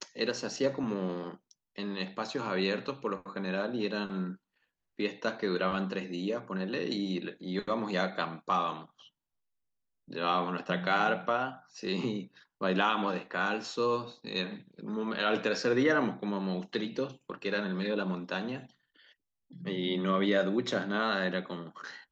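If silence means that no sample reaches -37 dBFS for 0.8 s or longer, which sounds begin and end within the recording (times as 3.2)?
10.11–18.6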